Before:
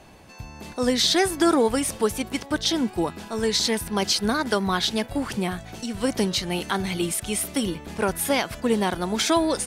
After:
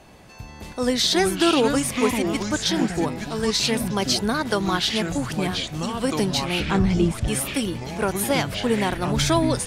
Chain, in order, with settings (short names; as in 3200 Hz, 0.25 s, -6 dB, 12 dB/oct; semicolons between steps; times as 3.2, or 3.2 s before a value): 6.6–7.28 RIAA curve playback; echoes that change speed 87 ms, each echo -5 st, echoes 3, each echo -6 dB